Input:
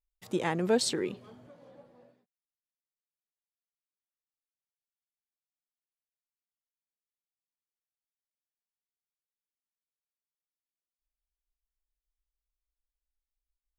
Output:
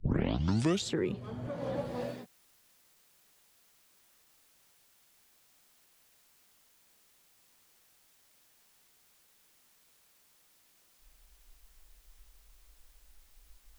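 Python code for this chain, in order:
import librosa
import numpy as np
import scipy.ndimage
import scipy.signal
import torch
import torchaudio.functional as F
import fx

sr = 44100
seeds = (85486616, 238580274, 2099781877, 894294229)

y = fx.tape_start_head(x, sr, length_s=0.93)
y = fx.band_squash(y, sr, depth_pct=100)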